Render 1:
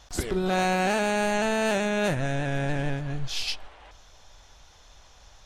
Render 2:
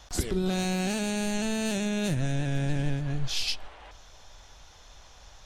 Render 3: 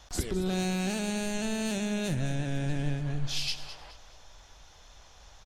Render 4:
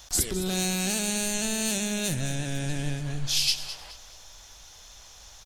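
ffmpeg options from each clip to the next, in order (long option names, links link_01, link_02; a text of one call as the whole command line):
ffmpeg -i in.wav -filter_complex "[0:a]acrossover=split=340|3000[link_01][link_02][link_03];[link_02]acompressor=threshold=-41dB:ratio=4[link_04];[link_01][link_04][link_03]amix=inputs=3:normalize=0,volume=1.5dB" out.wav
ffmpeg -i in.wav -af "aecho=1:1:210|420|630:0.224|0.0739|0.0244,volume=-2.5dB" out.wav
ffmpeg -i in.wav -af "crystalizer=i=3.5:c=0" out.wav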